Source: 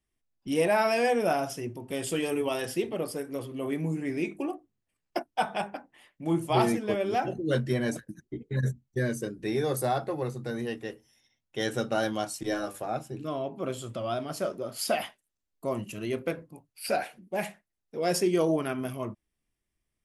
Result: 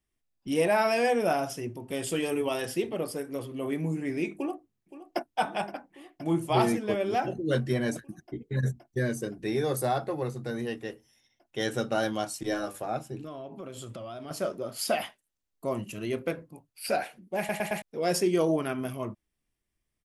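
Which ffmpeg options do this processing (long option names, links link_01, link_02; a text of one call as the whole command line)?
ffmpeg -i in.wav -filter_complex "[0:a]asplit=2[link_01][link_02];[link_02]afade=type=in:start_time=4.34:duration=0.01,afade=type=out:start_time=5.35:duration=0.01,aecho=0:1:520|1040|1560|2080|2600|3120|3640|4160|4680|5200|5720|6240:0.188365|0.150692|0.120554|0.0964428|0.0771543|0.0617234|0.0493787|0.039503|0.0316024|0.0252819|0.0202255|0.0161804[link_03];[link_01][link_03]amix=inputs=2:normalize=0,asettb=1/sr,asplit=3[link_04][link_05][link_06];[link_04]atrim=end=13.184[link_07];[link_05]atrim=start=13.18:end=14.31,asetpts=PTS-STARTPTS,afade=type=in:duration=0.004:curve=qsin,afade=type=out:start_time=1.126:duration=0.004:curve=qsin,acompressor=threshold=-36dB:ratio=10:attack=3.2:release=140:knee=1:detection=peak[link_08];[link_06]atrim=start=14.306[link_09];[link_07][link_08]acrossfade=duration=0.004:curve1=hsin:curve2=qsin[link_10];[link_10][link_09]acrossfade=duration=0.004:curve1=qsin:curve2=hsin,asplit=5[link_11][link_12][link_13][link_14][link_15];[link_11]atrim=end=17.492[link_16];[link_12]atrim=start=17.378:end=17.492[link_17];[link_13]atrim=start=17.378:end=17.492[link_18];[link_14]atrim=start=17.378:end=17.492[link_19];[link_15]atrim=start=17.818[link_20];[link_16][link_17]acrossfade=duration=0.004:curve1=hsin:curve2=hsin[link_21];[link_21][link_18]acrossfade=duration=0.004:curve1=hsin:curve2=hsin[link_22];[link_22][link_19]acrossfade=duration=0.004:curve1=hsin:curve2=hsin[link_23];[link_23][link_20]acrossfade=duration=0.004:curve1=hsin:curve2=hsin" out.wav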